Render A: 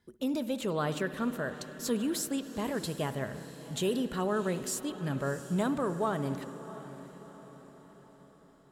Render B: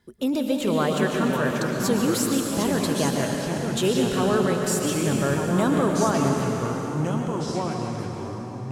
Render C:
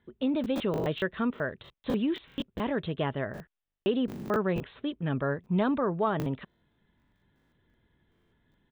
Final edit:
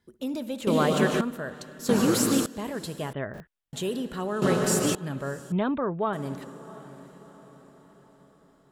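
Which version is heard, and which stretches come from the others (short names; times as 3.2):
A
0.67–1.21 from B
1.89–2.46 from B
3.13–3.73 from C
4.42–4.95 from B
5.52–6.13 from C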